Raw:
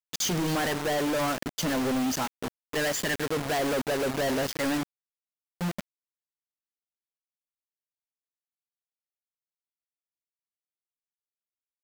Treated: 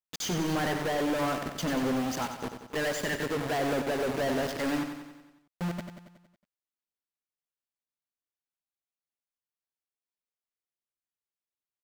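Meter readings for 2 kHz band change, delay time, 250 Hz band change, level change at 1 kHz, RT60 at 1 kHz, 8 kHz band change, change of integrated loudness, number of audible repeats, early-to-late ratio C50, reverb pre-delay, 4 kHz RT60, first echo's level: -2.5 dB, 92 ms, -1.5 dB, -1.5 dB, none, -6.0 dB, -2.5 dB, 6, none, none, none, -8.0 dB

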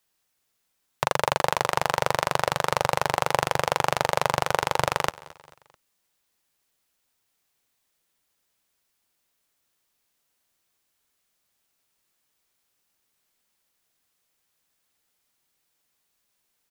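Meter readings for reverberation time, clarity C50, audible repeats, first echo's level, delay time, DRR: none, none, 3, -21.0 dB, 0.219 s, none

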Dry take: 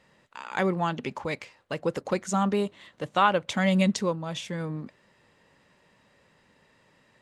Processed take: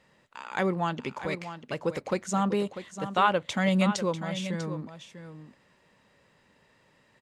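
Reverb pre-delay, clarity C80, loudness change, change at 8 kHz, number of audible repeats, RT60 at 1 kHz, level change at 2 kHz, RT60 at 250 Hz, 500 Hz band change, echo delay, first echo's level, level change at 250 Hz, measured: none, none, -1.5 dB, -1.0 dB, 1, none, -1.0 dB, none, -1.0 dB, 0.645 s, -11.0 dB, -1.0 dB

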